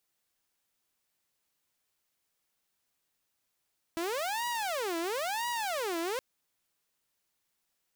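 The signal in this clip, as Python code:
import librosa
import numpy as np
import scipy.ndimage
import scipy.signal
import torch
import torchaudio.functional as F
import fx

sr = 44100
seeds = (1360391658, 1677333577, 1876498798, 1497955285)

y = fx.siren(sr, length_s=2.22, kind='wail', low_hz=330.0, high_hz=963.0, per_s=0.99, wave='saw', level_db=-28.5)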